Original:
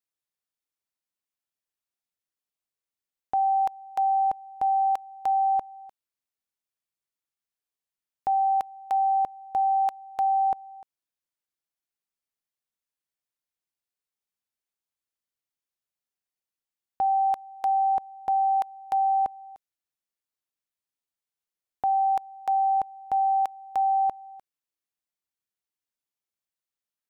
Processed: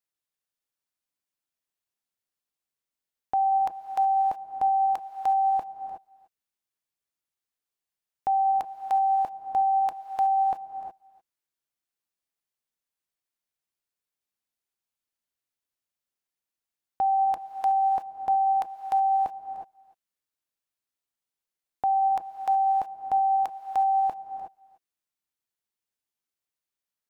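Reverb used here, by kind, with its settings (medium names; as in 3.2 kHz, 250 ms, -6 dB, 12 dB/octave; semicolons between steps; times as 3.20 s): gated-style reverb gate 390 ms rising, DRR 7 dB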